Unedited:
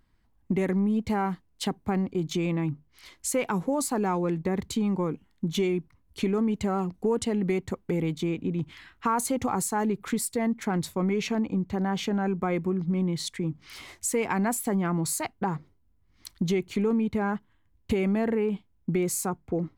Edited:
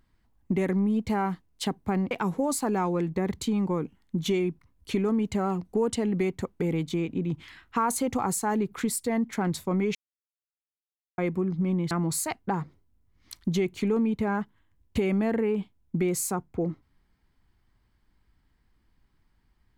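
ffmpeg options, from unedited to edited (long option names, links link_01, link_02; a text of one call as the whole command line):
ffmpeg -i in.wav -filter_complex "[0:a]asplit=5[link_01][link_02][link_03][link_04][link_05];[link_01]atrim=end=2.112[link_06];[link_02]atrim=start=3.398:end=11.24,asetpts=PTS-STARTPTS,afade=type=out:start_time=7.838:duration=0.004:curve=hsin[link_07];[link_03]atrim=start=11.24:end=12.47,asetpts=PTS-STARTPTS,volume=0[link_08];[link_04]atrim=start=12.47:end=13.202,asetpts=PTS-STARTPTS,afade=type=in:duration=0.004:curve=hsin[link_09];[link_05]atrim=start=14.848[link_10];[link_07][link_08][link_09]concat=n=3:v=0:a=1[link_11];[link_06][link_11]acrossfade=duration=0.004:curve1=hsin:curve2=hsin[link_12];[link_12][link_10]acrossfade=duration=0.004:curve1=hsin:curve2=hsin" out.wav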